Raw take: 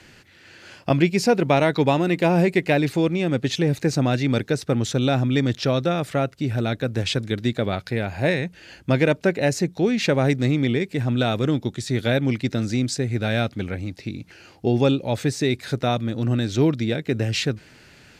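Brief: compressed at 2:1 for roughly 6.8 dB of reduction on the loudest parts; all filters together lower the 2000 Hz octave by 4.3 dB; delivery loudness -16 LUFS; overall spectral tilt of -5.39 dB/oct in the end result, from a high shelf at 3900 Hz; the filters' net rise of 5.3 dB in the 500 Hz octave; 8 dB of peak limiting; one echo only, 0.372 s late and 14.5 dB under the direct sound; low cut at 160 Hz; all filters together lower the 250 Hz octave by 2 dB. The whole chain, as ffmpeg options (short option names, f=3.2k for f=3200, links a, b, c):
-af "highpass=160,equalizer=f=250:t=o:g=-4.5,equalizer=f=500:t=o:g=8,equalizer=f=2k:t=o:g=-5,highshelf=f=3.9k:g=-4,acompressor=threshold=-22dB:ratio=2,alimiter=limit=-16.5dB:level=0:latency=1,aecho=1:1:372:0.188,volume=11.5dB"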